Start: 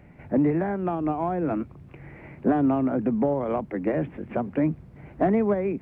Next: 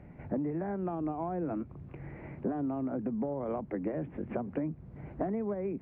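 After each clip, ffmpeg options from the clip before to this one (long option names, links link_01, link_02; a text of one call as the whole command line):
ffmpeg -i in.wav -af "lowpass=frequency=1200:poles=1,acompressor=threshold=-31dB:ratio=6" out.wav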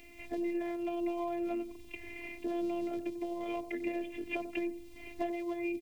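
ffmpeg -i in.wav -filter_complex "[0:a]afftfilt=real='hypot(re,im)*cos(PI*b)':imag='0':win_size=512:overlap=0.75,asplit=2[link_01][link_02];[link_02]adelay=93,lowpass=frequency=1100:poles=1,volume=-11dB,asplit=2[link_03][link_04];[link_04]adelay=93,lowpass=frequency=1100:poles=1,volume=0.36,asplit=2[link_05][link_06];[link_06]adelay=93,lowpass=frequency=1100:poles=1,volume=0.36,asplit=2[link_07][link_08];[link_08]adelay=93,lowpass=frequency=1100:poles=1,volume=0.36[link_09];[link_01][link_03][link_05][link_07][link_09]amix=inputs=5:normalize=0,aexciter=amount=15.4:drive=8.5:freq=2400" out.wav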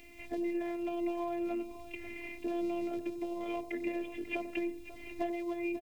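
ffmpeg -i in.wav -af "aecho=1:1:542:0.2" out.wav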